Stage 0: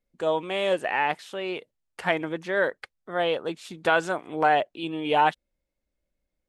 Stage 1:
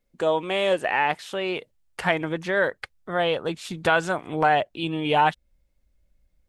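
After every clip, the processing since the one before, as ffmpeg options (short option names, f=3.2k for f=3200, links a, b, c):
-filter_complex "[0:a]asubboost=boost=3.5:cutoff=160,asplit=2[a][b];[b]acompressor=threshold=-31dB:ratio=6,volume=0dB[c];[a][c]amix=inputs=2:normalize=0"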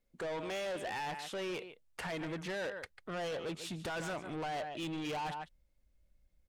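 -af "aecho=1:1:145:0.141,alimiter=limit=-17dB:level=0:latency=1:release=13,asoftclip=type=tanh:threshold=-30.5dB,volume=-5dB"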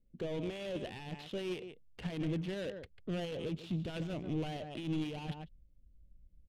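-af "firequalizer=gain_entry='entry(150,0);entry(900,-17);entry(1400,-15);entry(2900,8)':delay=0.05:min_phase=1,alimiter=level_in=8.5dB:limit=-24dB:level=0:latency=1:release=45,volume=-8.5dB,adynamicsmooth=sensitivity=6:basefreq=740,volume=9.5dB"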